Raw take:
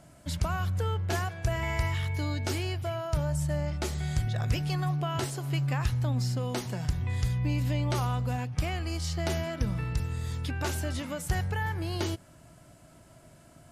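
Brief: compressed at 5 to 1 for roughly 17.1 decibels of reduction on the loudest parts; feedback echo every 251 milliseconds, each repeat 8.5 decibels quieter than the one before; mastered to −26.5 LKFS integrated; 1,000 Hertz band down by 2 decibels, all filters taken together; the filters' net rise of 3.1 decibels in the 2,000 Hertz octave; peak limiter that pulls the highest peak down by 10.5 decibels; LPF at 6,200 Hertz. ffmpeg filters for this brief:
ffmpeg -i in.wav -af "lowpass=6200,equalizer=frequency=1000:width_type=o:gain=-4,equalizer=frequency=2000:width_type=o:gain=5,acompressor=threshold=-43dB:ratio=5,alimiter=level_in=15.5dB:limit=-24dB:level=0:latency=1,volume=-15.5dB,aecho=1:1:251|502|753|1004:0.376|0.143|0.0543|0.0206,volume=20.5dB" out.wav

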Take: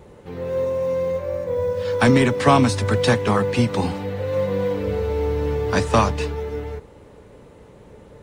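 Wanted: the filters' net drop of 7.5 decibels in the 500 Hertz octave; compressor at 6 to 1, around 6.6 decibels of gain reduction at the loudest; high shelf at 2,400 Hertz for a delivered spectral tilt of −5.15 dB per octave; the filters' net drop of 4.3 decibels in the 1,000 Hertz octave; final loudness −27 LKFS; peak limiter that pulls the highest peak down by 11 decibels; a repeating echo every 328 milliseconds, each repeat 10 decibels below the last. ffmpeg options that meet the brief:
ffmpeg -i in.wav -af "equalizer=frequency=500:width_type=o:gain=-7.5,equalizer=frequency=1000:width_type=o:gain=-4.5,highshelf=frequency=2400:gain=7.5,acompressor=threshold=-20dB:ratio=6,alimiter=limit=-18.5dB:level=0:latency=1,aecho=1:1:328|656|984|1312:0.316|0.101|0.0324|0.0104,volume=1.5dB" out.wav

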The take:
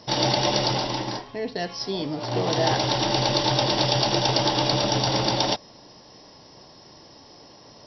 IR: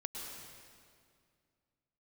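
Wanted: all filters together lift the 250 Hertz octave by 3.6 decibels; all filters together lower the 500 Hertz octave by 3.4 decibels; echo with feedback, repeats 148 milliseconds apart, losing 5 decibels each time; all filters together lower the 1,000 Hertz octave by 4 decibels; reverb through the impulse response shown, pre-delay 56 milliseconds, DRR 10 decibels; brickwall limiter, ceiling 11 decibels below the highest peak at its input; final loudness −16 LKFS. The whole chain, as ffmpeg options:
-filter_complex "[0:a]equalizer=frequency=250:width_type=o:gain=7.5,equalizer=frequency=500:width_type=o:gain=-5.5,equalizer=frequency=1000:width_type=o:gain=-3.5,alimiter=limit=-16.5dB:level=0:latency=1,aecho=1:1:148|296|444|592|740|888|1036:0.562|0.315|0.176|0.0988|0.0553|0.031|0.0173,asplit=2[link_01][link_02];[1:a]atrim=start_sample=2205,adelay=56[link_03];[link_02][link_03]afir=irnorm=-1:irlink=0,volume=-9.5dB[link_04];[link_01][link_04]amix=inputs=2:normalize=0,volume=8.5dB"

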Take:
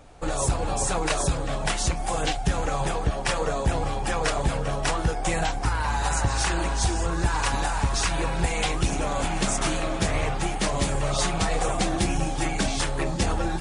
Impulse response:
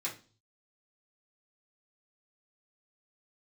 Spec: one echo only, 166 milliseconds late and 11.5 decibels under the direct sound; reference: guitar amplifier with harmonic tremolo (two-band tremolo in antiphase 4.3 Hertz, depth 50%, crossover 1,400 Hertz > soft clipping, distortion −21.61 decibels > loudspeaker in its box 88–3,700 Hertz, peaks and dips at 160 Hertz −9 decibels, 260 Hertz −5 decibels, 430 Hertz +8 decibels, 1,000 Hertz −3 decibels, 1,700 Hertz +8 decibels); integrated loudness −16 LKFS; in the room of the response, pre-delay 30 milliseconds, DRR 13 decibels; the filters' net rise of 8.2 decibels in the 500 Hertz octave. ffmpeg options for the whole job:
-filter_complex "[0:a]equalizer=frequency=500:width_type=o:gain=6,aecho=1:1:166:0.266,asplit=2[link_01][link_02];[1:a]atrim=start_sample=2205,adelay=30[link_03];[link_02][link_03]afir=irnorm=-1:irlink=0,volume=-15.5dB[link_04];[link_01][link_04]amix=inputs=2:normalize=0,acrossover=split=1400[link_05][link_06];[link_05]aeval=exprs='val(0)*(1-0.5/2+0.5/2*cos(2*PI*4.3*n/s))':channel_layout=same[link_07];[link_06]aeval=exprs='val(0)*(1-0.5/2-0.5/2*cos(2*PI*4.3*n/s))':channel_layout=same[link_08];[link_07][link_08]amix=inputs=2:normalize=0,asoftclip=threshold=-15.5dB,highpass=88,equalizer=frequency=160:width_type=q:width=4:gain=-9,equalizer=frequency=260:width_type=q:width=4:gain=-5,equalizer=frequency=430:width_type=q:width=4:gain=8,equalizer=frequency=1000:width_type=q:width=4:gain=-3,equalizer=frequency=1700:width_type=q:width=4:gain=8,lowpass=frequency=3700:width=0.5412,lowpass=frequency=3700:width=1.3066,volume=11dB"

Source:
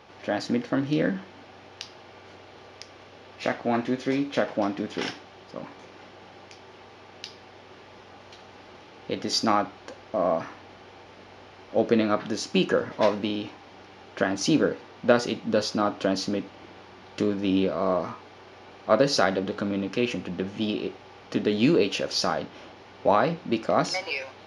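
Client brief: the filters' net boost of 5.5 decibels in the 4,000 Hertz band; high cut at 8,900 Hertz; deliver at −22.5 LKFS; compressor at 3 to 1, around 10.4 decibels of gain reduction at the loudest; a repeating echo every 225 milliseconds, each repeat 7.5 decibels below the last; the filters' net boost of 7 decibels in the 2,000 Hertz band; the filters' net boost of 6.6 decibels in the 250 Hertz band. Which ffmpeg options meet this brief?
ffmpeg -i in.wav -af "lowpass=8900,equalizer=frequency=250:width_type=o:gain=8,equalizer=frequency=2000:width_type=o:gain=8,equalizer=frequency=4000:width_type=o:gain=5,acompressor=threshold=-25dB:ratio=3,aecho=1:1:225|450|675|900|1125:0.422|0.177|0.0744|0.0312|0.0131,volume=6dB" out.wav

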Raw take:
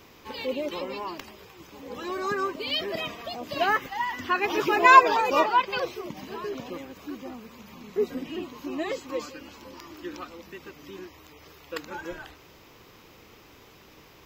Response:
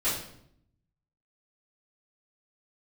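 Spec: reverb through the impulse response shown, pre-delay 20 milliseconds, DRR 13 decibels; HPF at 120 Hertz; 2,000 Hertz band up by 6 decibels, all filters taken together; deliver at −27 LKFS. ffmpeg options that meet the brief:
-filter_complex "[0:a]highpass=120,equalizer=frequency=2000:width_type=o:gain=8,asplit=2[link_01][link_02];[1:a]atrim=start_sample=2205,adelay=20[link_03];[link_02][link_03]afir=irnorm=-1:irlink=0,volume=-22.5dB[link_04];[link_01][link_04]amix=inputs=2:normalize=0,volume=-5dB"

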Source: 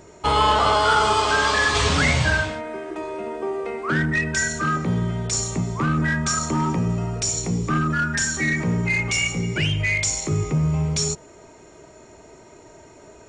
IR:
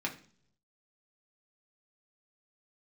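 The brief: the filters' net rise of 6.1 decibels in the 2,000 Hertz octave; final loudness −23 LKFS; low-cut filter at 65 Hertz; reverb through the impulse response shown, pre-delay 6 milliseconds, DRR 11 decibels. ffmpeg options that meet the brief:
-filter_complex "[0:a]highpass=65,equalizer=frequency=2000:width_type=o:gain=7.5,asplit=2[link_01][link_02];[1:a]atrim=start_sample=2205,adelay=6[link_03];[link_02][link_03]afir=irnorm=-1:irlink=0,volume=-15dB[link_04];[link_01][link_04]amix=inputs=2:normalize=0,volume=-5dB"

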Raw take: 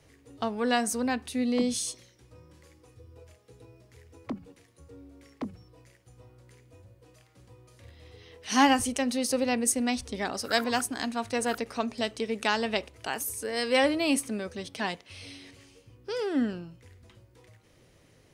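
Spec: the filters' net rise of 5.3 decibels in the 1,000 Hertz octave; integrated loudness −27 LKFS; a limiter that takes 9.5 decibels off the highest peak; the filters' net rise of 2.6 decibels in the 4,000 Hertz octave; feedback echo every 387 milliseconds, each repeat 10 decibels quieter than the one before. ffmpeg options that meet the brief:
ffmpeg -i in.wav -af "equalizer=frequency=1000:width_type=o:gain=7,equalizer=frequency=4000:width_type=o:gain=3,alimiter=limit=-15dB:level=0:latency=1,aecho=1:1:387|774|1161|1548:0.316|0.101|0.0324|0.0104,volume=1.5dB" out.wav

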